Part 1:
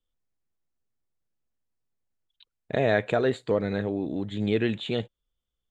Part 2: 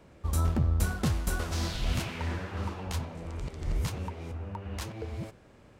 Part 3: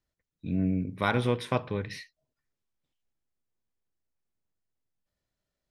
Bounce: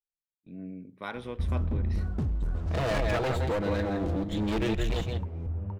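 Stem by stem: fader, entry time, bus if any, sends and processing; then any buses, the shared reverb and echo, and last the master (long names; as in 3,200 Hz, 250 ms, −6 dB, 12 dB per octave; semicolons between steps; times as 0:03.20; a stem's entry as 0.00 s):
−1.5 dB, 0.00 s, bus A, no send, echo send −12 dB, lower of the sound and its delayed copy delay 6.1 ms
−11.0 dB, 1.15 s, bus A, no send, no echo send, spectral tilt −3.5 dB per octave
−14.5 dB, 0.00 s, no bus, no send, no echo send, high-pass filter 190 Hz 12 dB per octave
bus A: 0.0 dB, hard clipping −25.5 dBFS, distortion −9 dB; downward compressor, threshold −31 dBFS, peak gain reduction 4.5 dB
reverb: not used
echo: single-tap delay 167 ms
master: noise gate with hold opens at −47 dBFS; automatic gain control gain up to 4.5 dB; one half of a high-frequency compander decoder only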